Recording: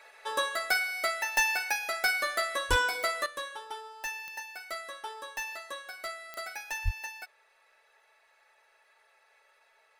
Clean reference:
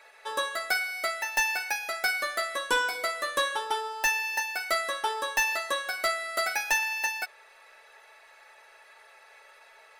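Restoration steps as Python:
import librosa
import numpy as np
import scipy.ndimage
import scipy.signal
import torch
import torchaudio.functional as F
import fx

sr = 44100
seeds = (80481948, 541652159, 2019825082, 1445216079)

y = fx.fix_declip(x, sr, threshold_db=-19.0)
y = fx.fix_declick_ar(y, sr, threshold=10.0)
y = fx.fix_deplosive(y, sr, at_s=(2.69, 6.84))
y = fx.fix_level(y, sr, at_s=3.26, step_db=11.0)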